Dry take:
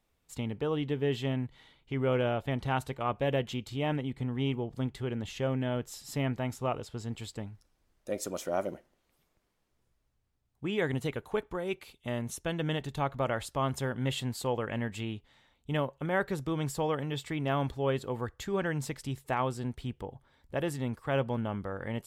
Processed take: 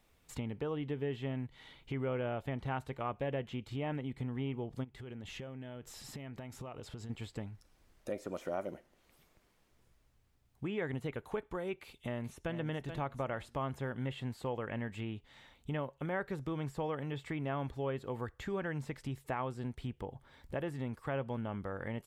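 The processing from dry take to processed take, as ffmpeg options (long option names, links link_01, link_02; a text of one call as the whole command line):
ffmpeg -i in.wav -filter_complex "[0:a]asplit=3[link_01][link_02][link_03];[link_01]afade=type=out:start_time=4.83:duration=0.02[link_04];[link_02]acompressor=threshold=-43dB:ratio=12:attack=3.2:release=140:knee=1:detection=peak,afade=type=in:start_time=4.83:duration=0.02,afade=type=out:start_time=7.09:duration=0.02[link_05];[link_03]afade=type=in:start_time=7.09:duration=0.02[link_06];[link_04][link_05][link_06]amix=inputs=3:normalize=0,asplit=2[link_07][link_08];[link_08]afade=type=in:start_time=11.78:duration=0.01,afade=type=out:start_time=12.56:duration=0.01,aecho=0:1:430|860|1290:0.298538|0.0895615|0.0268684[link_09];[link_07][link_09]amix=inputs=2:normalize=0,acrossover=split=2600[link_10][link_11];[link_11]acompressor=threshold=-55dB:ratio=4:attack=1:release=60[link_12];[link_10][link_12]amix=inputs=2:normalize=0,equalizer=frequency=2200:width=1.5:gain=2,acompressor=threshold=-50dB:ratio=2,volume=6dB" out.wav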